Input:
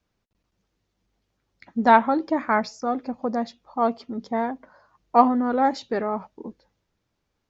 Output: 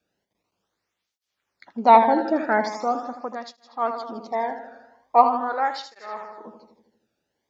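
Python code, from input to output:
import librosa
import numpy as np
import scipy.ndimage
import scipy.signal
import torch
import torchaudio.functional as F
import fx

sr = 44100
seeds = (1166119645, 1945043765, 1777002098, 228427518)

y = fx.peak_eq(x, sr, hz=240.0, db=-8.0, octaves=1.6, at=(4.2, 6.47))
y = fx.echo_feedback(y, sr, ms=80, feedback_pct=59, wet_db=-9)
y = fx.flanger_cancel(y, sr, hz=0.42, depth_ms=1.0)
y = y * 10.0 ** (3.0 / 20.0)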